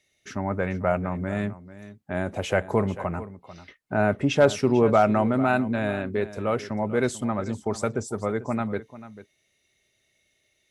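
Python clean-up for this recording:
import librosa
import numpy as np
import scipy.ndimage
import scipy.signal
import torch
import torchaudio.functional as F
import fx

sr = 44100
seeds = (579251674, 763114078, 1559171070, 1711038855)

y = fx.fix_declip(x, sr, threshold_db=-7.5)
y = fx.fix_echo_inverse(y, sr, delay_ms=443, level_db=-15.5)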